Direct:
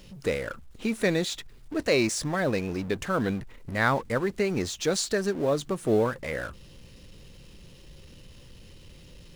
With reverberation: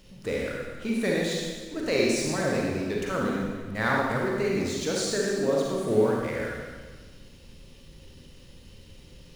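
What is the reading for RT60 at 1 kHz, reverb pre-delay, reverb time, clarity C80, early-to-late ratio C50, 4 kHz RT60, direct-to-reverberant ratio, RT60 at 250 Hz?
1.4 s, 36 ms, 1.4 s, 1.5 dB, −1.0 dB, 1.4 s, −3.0 dB, 1.6 s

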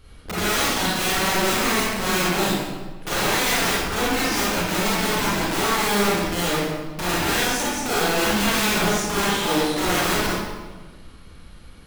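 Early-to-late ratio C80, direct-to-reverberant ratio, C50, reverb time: 0.0 dB, −8.5 dB, −4.0 dB, 1.4 s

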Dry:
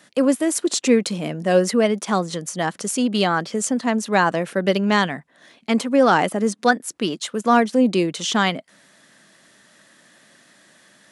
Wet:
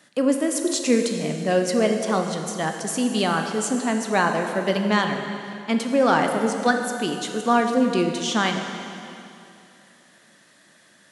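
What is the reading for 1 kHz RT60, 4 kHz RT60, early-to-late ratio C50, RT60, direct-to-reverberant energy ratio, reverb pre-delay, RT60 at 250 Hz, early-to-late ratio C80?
2.7 s, 2.5 s, 5.0 dB, 2.7 s, 4.0 dB, 6 ms, 2.8 s, 6.0 dB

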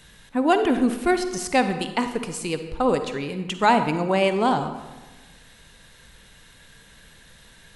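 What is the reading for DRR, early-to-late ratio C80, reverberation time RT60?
8.5 dB, 11.0 dB, 1.2 s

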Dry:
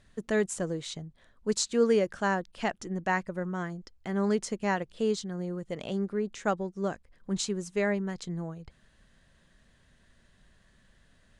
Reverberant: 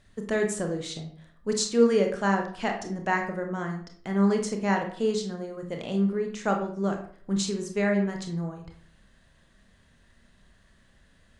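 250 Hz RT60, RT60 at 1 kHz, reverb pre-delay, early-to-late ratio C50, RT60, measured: 0.60 s, 0.50 s, 24 ms, 7.0 dB, 0.50 s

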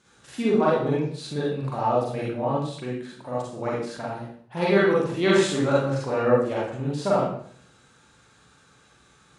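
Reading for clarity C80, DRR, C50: 5.0 dB, −6.5 dB, −1.0 dB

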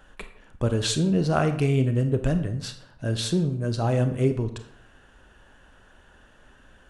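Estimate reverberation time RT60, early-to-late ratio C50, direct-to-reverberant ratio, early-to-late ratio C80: 0.70 s, 10.5 dB, 8.0 dB, 13.5 dB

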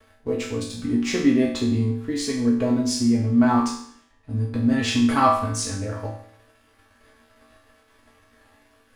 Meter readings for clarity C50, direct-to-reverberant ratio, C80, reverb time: 4.5 dB, −5.5 dB, 7.5 dB, 0.65 s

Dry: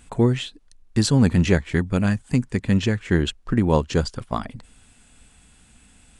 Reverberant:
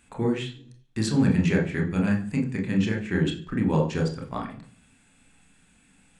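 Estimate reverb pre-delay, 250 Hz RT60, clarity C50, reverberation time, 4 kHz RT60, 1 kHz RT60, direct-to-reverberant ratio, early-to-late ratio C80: 27 ms, 0.70 s, 9.5 dB, 0.50 s, 0.60 s, 0.40 s, 0.5 dB, 14.0 dB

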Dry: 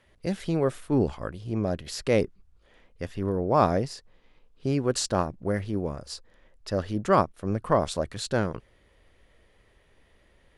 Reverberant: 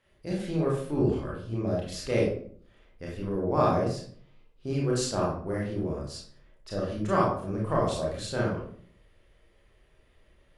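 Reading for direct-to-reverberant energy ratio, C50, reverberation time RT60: −5.0 dB, 2.5 dB, 0.55 s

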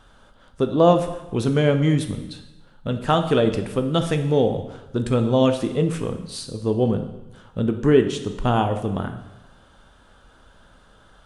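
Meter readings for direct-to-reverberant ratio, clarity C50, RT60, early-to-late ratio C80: 6.5 dB, 9.5 dB, 1.0 s, 12.0 dB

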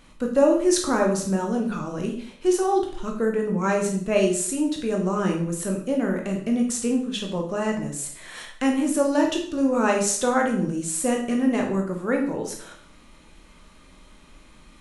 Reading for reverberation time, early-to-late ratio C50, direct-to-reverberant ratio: 0.55 s, 6.5 dB, 1.0 dB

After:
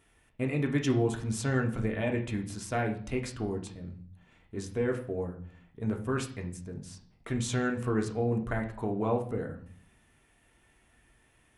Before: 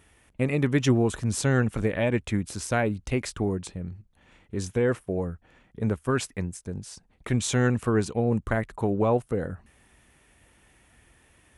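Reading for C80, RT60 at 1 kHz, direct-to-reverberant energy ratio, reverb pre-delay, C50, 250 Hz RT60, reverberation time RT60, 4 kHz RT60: 14.5 dB, 0.50 s, 2.0 dB, 3 ms, 10.5 dB, 0.80 s, 0.50 s, 0.50 s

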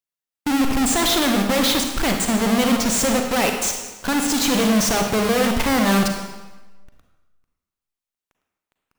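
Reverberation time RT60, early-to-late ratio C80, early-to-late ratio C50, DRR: 1.2 s, 6.0 dB, 4.5 dB, 3.5 dB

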